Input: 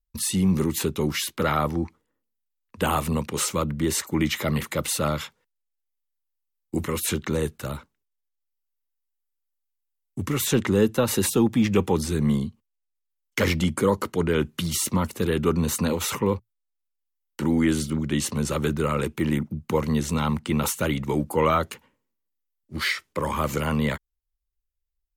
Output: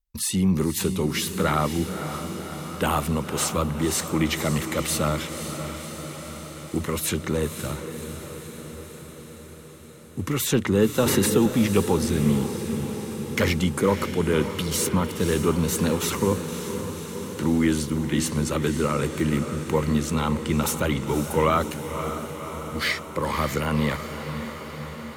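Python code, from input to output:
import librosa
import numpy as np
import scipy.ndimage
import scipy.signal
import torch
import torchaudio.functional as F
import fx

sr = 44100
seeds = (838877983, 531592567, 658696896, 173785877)

y = fx.echo_diffused(x, sr, ms=544, feedback_pct=69, wet_db=-9.0)
y = fx.band_squash(y, sr, depth_pct=70, at=(11.06, 11.46))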